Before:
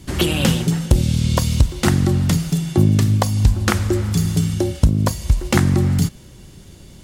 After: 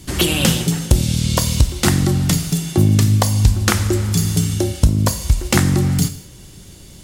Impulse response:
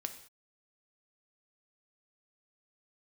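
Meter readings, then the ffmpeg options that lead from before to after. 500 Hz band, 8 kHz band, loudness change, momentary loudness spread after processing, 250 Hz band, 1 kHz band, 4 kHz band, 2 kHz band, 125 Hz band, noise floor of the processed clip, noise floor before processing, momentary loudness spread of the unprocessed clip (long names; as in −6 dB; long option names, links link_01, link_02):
0.0 dB, +6.5 dB, +1.5 dB, 5 LU, 0.0 dB, +1.0 dB, +4.5 dB, +2.5 dB, +0.5 dB, −40 dBFS, −42 dBFS, 4 LU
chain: -filter_complex "[0:a]asplit=2[link_01][link_02];[1:a]atrim=start_sample=2205,highshelf=frequency=2900:gain=10.5[link_03];[link_02][link_03]afir=irnorm=-1:irlink=0,volume=2.5dB[link_04];[link_01][link_04]amix=inputs=2:normalize=0,volume=-6dB"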